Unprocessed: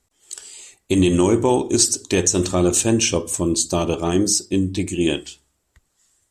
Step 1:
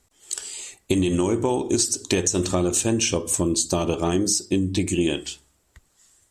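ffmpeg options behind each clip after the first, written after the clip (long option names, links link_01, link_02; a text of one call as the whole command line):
ffmpeg -i in.wav -af "acompressor=threshold=-23dB:ratio=6,volume=4.5dB" out.wav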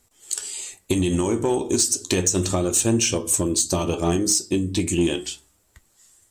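ffmpeg -i in.wav -filter_complex "[0:a]flanger=delay=8.2:depth=5.1:regen=64:speed=0.33:shape=triangular,highshelf=frequency=10000:gain=9,asplit=2[link_01][link_02];[link_02]asoftclip=type=hard:threshold=-19.5dB,volume=-3.5dB[link_03];[link_01][link_03]amix=inputs=2:normalize=0" out.wav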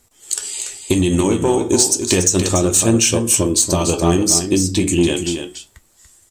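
ffmpeg -i in.wav -af "aecho=1:1:287:0.398,volume=5.5dB" out.wav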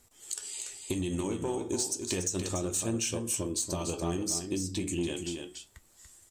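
ffmpeg -i in.wav -af "acompressor=threshold=-43dB:ratio=1.5,volume=-6dB" out.wav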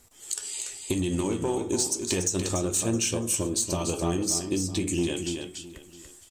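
ffmpeg -i in.wav -af "aecho=1:1:664:0.119,volume=5dB" out.wav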